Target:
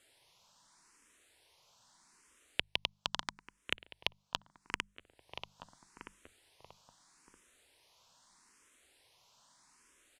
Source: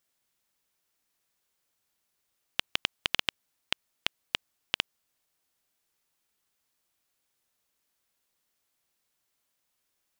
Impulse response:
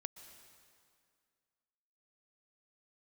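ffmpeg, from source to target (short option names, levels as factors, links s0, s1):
-filter_complex "[0:a]lowpass=f=9600:w=0.5412,lowpass=f=9600:w=1.3066,equalizer=f=980:w=5.9:g=7.5,bandreject=f=50:t=h:w=6,bandreject=f=100:t=h:w=6,bandreject=f=150:t=h:w=6,bandreject=f=200:t=h:w=6,asplit=2[s0][s1];[s1]adelay=635,lowpass=f=1300:p=1,volume=0.119,asplit=2[s2][s3];[s3]adelay=635,lowpass=f=1300:p=1,volume=0.52,asplit=2[s4][s5];[s5]adelay=635,lowpass=f=1300:p=1,volume=0.52,asplit=2[s6][s7];[s7]adelay=635,lowpass=f=1300:p=1,volume=0.52[s8];[s2][s4][s6][s8]amix=inputs=4:normalize=0[s9];[s0][s9]amix=inputs=2:normalize=0,acompressor=threshold=0.00158:ratio=2.5,asplit=2[s10][s11];[s11]afreqshift=0.79[s12];[s10][s12]amix=inputs=2:normalize=1,volume=7.08"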